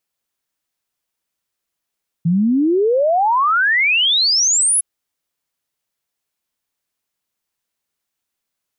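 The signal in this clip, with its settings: log sweep 160 Hz -> 11 kHz 2.56 s -12 dBFS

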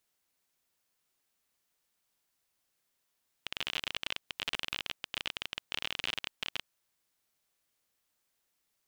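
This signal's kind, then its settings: random clicks 32 per s -16.5 dBFS 3.20 s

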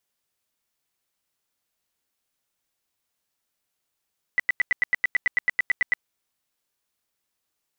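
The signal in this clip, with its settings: tone bursts 1.98 kHz, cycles 32, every 0.11 s, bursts 15, -16 dBFS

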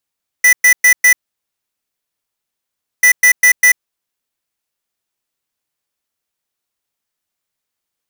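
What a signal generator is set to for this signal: beep pattern square 1.98 kHz, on 0.09 s, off 0.11 s, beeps 4, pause 1.90 s, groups 2, -7.5 dBFS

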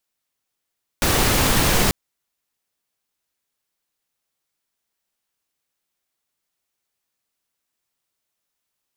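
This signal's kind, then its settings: noise pink, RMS -17.5 dBFS 0.89 s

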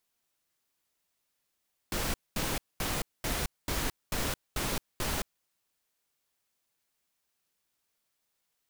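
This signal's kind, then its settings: noise bursts pink, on 0.22 s, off 0.22 s, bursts 8, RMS -31.5 dBFS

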